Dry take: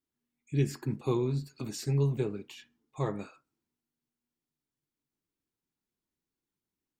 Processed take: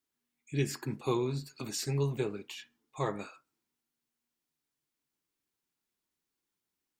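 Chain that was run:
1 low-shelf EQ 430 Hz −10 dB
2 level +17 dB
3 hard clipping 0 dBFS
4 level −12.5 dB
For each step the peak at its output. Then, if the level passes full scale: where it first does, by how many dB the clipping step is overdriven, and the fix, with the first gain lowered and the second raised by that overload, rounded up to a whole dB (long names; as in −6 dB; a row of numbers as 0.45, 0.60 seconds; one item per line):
−21.5, −4.5, −4.5, −17.0 dBFS
no step passes full scale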